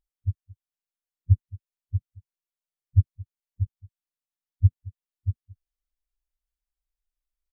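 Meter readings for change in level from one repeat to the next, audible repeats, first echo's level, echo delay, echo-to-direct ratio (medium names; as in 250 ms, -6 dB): no regular repeats, 1, -21.0 dB, 222 ms, -21.0 dB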